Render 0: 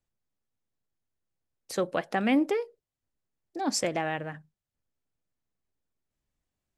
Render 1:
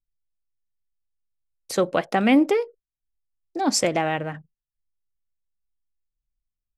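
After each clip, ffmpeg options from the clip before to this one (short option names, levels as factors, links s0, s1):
-af "anlmdn=0.000398,bandreject=f=1700:w=14,volume=2.24"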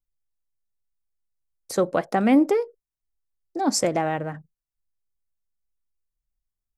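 -af "equalizer=f=2900:t=o:w=1.1:g=-9.5"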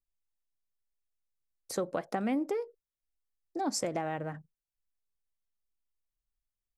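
-af "acompressor=threshold=0.0708:ratio=4,volume=0.501"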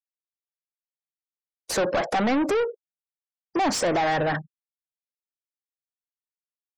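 -filter_complex "[0:a]asplit=2[s0][s1];[s1]highpass=f=720:p=1,volume=44.7,asoftclip=type=tanh:threshold=0.133[s2];[s0][s2]amix=inputs=2:normalize=0,lowpass=f=3400:p=1,volume=0.501,afftfilt=real='re*gte(hypot(re,im),0.00708)':imag='im*gte(hypot(re,im),0.00708)':win_size=1024:overlap=0.75,volume=1.26"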